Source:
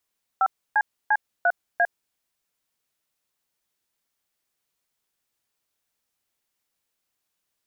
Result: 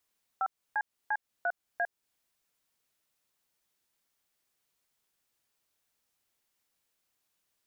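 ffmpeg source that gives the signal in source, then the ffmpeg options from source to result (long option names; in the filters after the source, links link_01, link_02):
-f lavfi -i "aevalsrc='0.112*clip(min(mod(t,0.347),0.053-mod(t,0.347))/0.002,0,1)*(eq(floor(t/0.347),0)*(sin(2*PI*770*mod(t,0.347))+sin(2*PI*1336*mod(t,0.347)))+eq(floor(t/0.347),1)*(sin(2*PI*852*mod(t,0.347))+sin(2*PI*1633*mod(t,0.347)))+eq(floor(t/0.347),2)*(sin(2*PI*852*mod(t,0.347))+sin(2*PI*1633*mod(t,0.347)))+eq(floor(t/0.347),3)*(sin(2*PI*697*mod(t,0.347))+sin(2*PI*1477*mod(t,0.347)))+eq(floor(t/0.347),4)*(sin(2*PI*697*mod(t,0.347))+sin(2*PI*1633*mod(t,0.347))))':duration=1.735:sample_rate=44100"
-af "alimiter=limit=-23dB:level=0:latency=1:release=264"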